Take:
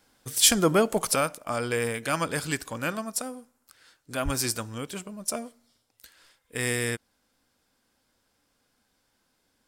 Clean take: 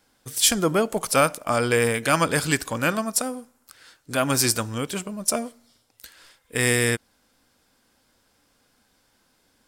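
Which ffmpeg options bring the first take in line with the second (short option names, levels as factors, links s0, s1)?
-filter_complex "[0:a]asplit=3[s0][s1][s2];[s0]afade=t=out:st=4.24:d=0.02[s3];[s1]highpass=f=140:w=0.5412,highpass=f=140:w=1.3066,afade=t=in:st=4.24:d=0.02,afade=t=out:st=4.36:d=0.02[s4];[s2]afade=t=in:st=4.36:d=0.02[s5];[s3][s4][s5]amix=inputs=3:normalize=0,asetnsamples=n=441:p=0,asendcmd='1.15 volume volume 7dB',volume=1"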